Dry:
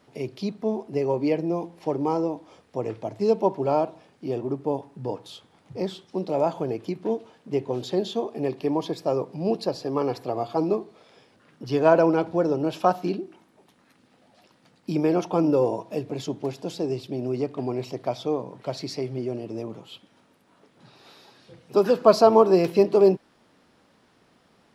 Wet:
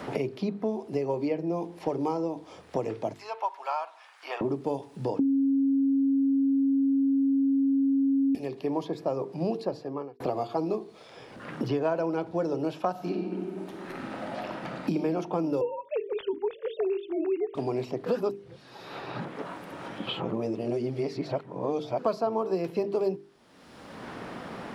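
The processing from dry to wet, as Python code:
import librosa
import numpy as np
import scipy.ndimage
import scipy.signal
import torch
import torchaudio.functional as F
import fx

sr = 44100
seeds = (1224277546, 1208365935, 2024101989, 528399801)

y = fx.highpass(x, sr, hz=1000.0, slope=24, at=(3.13, 4.41))
y = fx.reverb_throw(y, sr, start_s=12.91, length_s=2.05, rt60_s=1.2, drr_db=2.0)
y = fx.sine_speech(y, sr, at=(15.61, 17.55))
y = fx.edit(y, sr, fx.bleep(start_s=5.19, length_s=3.16, hz=273.0, db=-9.5),
    fx.fade_out_span(start_s=9.74, length_s=0.46, curve='qua'),
    fx.reverse_span(start_s=18.06, length_s=3.93), tone=tone)
y = fx.hum_notches(y, sr, base_hz=50, count=9)
y = fx.band_squash(y, sr, depth_pct=100)
y = F.gain(torch.from_numpy(y), -7.5).numpy()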